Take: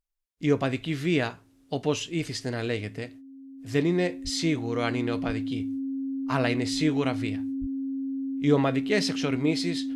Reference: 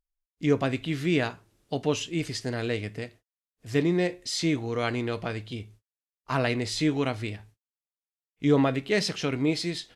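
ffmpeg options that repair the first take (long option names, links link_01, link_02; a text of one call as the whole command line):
ffmpeg -i in.wav -filter_complex "[0:a]bandreject=frequency=270:width=30,asplit=3[link_01][link_02][link_03];[link_01]afade=type=out:start_time=4.23:duration=0.02[link_04];[link_02]highpass=frequency=140:width=0.5412,highpass=frequency=140:width=1.3066,afade=type=in:start_time=4.23:duration=0.02,afade=type=out:start_time=4.35:duration=0.02[link_05];[link_03]afade=type=in:start_time=4.35:duration=0.02[link_06];[link_04][link_05][link_06]amix=inputs=3:normalize=0,asplit=3[link_07][link_08][link_09];[link_07]afade=type=out:start_time=5.26:duration=0.02[link_10];[link_08]highpass=frequency=140:width=0.5412,highpass=frequency=140:width=1.3066,afade=type=in:start_time=5.26:duration=0.02,afade=type=out:start_time=5.38:duration=0.02[link_11];[link_09]afade=type=in:start_time=5.38:duration=0.02[link_12];[link_10][link_11][link_12]amix=inputs=3:normalize=0,asplit=3[link_13][link_14][link_15];[link_13]afade=type=out:start_time=7.6:duration=0.02[link_16];[link_14]highpass=frequency=140:width=0.5412,highpass=frequency=140:width=1.3066,afade=type=in:start_time=7.6:duration=0.02,afade=type=out:start_time=7.72:duration=0.02[link_17];[link_15]afade=type=in:start_time=7.72:duration=0.02[link_18];[link_16][link_17][link_18]amix=inputs=3:normalize=0" out.wav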